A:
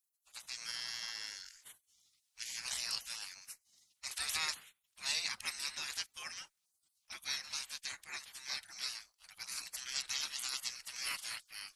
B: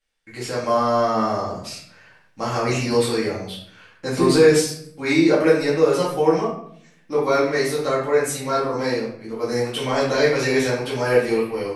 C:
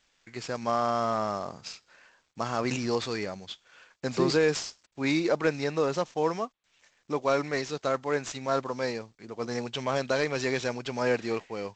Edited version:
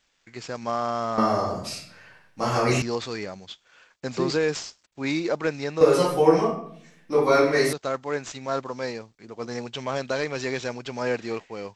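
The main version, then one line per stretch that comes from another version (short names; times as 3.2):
C
1.18–2.82 from B
5.81–7.73 from B
not used: A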